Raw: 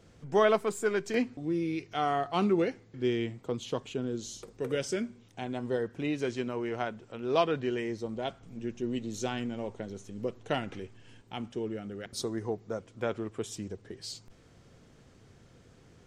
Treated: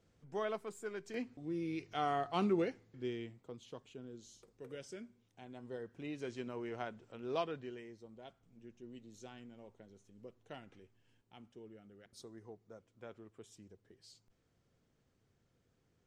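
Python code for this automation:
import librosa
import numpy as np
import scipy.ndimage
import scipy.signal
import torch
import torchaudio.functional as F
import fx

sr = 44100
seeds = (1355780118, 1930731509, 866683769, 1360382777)

y = fx.gain(x, sr, db=fx.line((0.97, -14.5), (1.83, -6.0), (2.57, -6.0), (3.57, -16.5), (5.41, -16.5), (6.56, -9.0), (7.28, -9.0), (7.95, -19.0)))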